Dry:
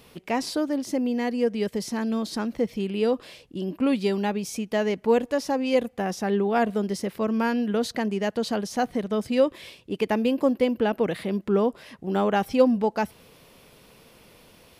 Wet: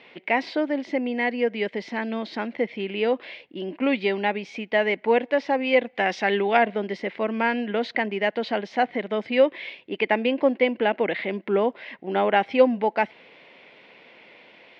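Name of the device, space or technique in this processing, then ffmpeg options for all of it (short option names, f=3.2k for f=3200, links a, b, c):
phone earpiece: -filter_complex "[0:a]highpass=360,equalizer=f=450:t=q:w=4:g=-4,equalizer=f=1.2k:t=q:w=4:g=-8,equalizer=f=2.1k:t=q:w=4:g=9,lowpass=f=3.4k:w=0.5412,lowpass=f=3.4k:w=1.3066,asettb=1/sr,asplit=3[a][b][c];[a]atrim=end=5.954[d];[b]atrim=start=5.95:end=6.57,asetpts=PTS-STARTPTS,afade=t=in:d=0.004:c=qsin,afade=t=out:st=0.616:d=0.004:c=qsin,highshelf=f=2k:g=11[e];[c]atrim=start=6.566[f];[d][e]acrossfade=d=0.004:c1=hsin:c2=qsin[g];[g][f]acrossfade=d=0.004:c1=qsin:c2=hsin,volume=5dB"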